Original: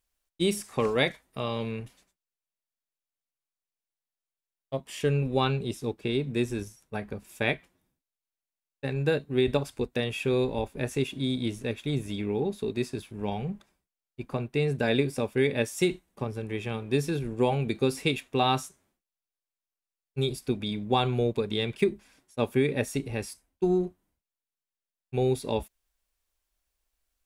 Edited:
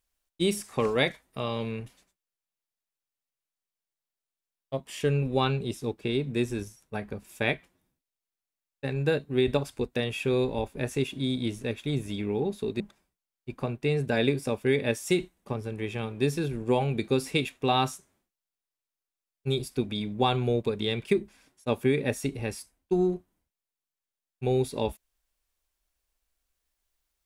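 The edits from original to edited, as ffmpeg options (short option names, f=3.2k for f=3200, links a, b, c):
-filter_complex "[0:a]asplit=2[a][b];[a]atrim=end=12.802[c];[b]atrim=start=13.508[d];[c][d]acrossfade=d=0.004:c1=hsin:c2=hsin"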